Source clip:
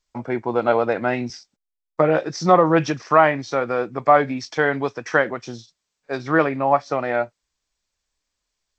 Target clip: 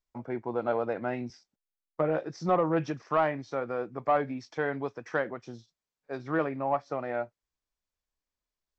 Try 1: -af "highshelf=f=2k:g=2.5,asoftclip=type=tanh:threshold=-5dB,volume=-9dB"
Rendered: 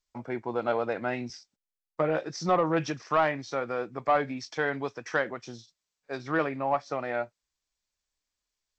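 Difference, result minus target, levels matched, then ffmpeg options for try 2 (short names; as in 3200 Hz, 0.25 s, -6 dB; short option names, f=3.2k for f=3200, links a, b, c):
4000 Hz band +7.5 dB
-af "highshelf=f=2k:g=-9,asoftclip=type=tanh:threshold=-5dB,volume=-9dB"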